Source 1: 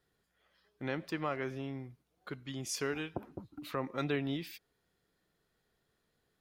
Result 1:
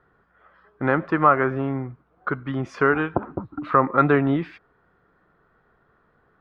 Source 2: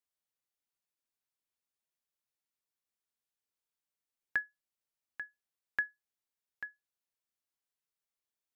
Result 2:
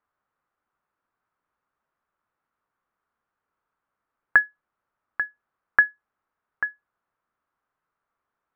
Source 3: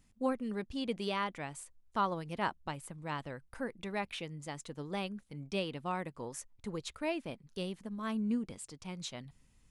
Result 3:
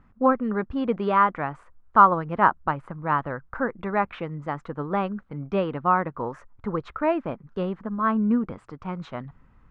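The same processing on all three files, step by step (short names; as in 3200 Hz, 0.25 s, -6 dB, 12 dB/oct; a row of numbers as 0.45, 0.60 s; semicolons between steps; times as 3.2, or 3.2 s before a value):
synth low-pass 1300 Hz, resonance Q 2.9; normalise peaks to -3 dBFS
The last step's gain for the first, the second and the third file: +14.5, +14.0, +10.5 dB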